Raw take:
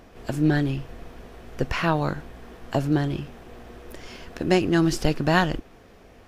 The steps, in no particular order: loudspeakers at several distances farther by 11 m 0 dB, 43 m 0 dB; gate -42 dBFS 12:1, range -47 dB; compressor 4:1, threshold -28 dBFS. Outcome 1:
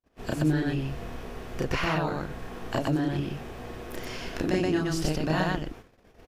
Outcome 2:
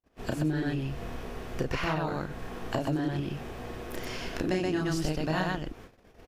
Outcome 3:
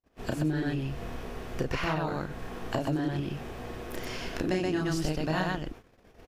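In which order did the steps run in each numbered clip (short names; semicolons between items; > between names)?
compressor > loudspeakers at several distances > gate; loudspeakers at several distances > gate > compressor; loudspeakers at several distances > compressor > gate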